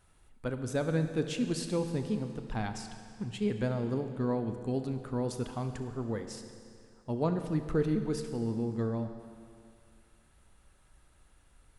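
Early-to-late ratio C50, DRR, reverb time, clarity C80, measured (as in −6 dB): 8.0 dB, 7.0 dB, 2.3 s, 9.0 dB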